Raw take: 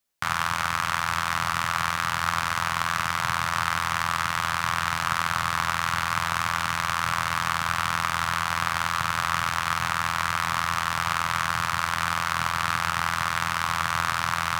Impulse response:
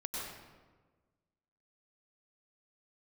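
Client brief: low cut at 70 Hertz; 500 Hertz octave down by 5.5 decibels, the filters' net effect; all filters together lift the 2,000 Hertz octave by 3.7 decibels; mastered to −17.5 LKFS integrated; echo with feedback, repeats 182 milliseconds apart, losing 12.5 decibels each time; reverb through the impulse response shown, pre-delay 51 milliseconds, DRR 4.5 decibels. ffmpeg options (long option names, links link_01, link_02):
-filter_complex "[0:a]highpass=70,equalizer=frequency=500:width_type=o:gain=-8.5,equalizer=frequency=2000:width_type=o:gain=5.5,aecho=1:1:182|364|546:0.237|0.0569|0.0137,asplit=2[link_01][link_02];[1:a]atrim=start_sample=2205,adelay=51[link_03];[link_02][link_03]afir=irnorm=-1:irlink=0,volume=-6.5dB[link_04];[link_01][link_04]amix=inputs=2:normalize=0,volume=4.5dB"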